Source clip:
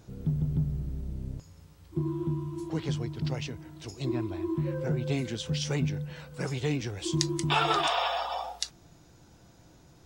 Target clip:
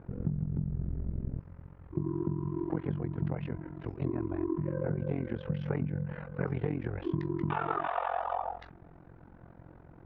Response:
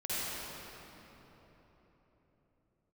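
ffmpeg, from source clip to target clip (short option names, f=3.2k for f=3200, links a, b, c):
-af "lowpass=f=1.8k:w=0.5412,lowpass=f=1.8k:w=1.3066,acompressor=threshold=-33dB:ratio=6,tremolo=f=44:d=0.919,volume=7.5dB"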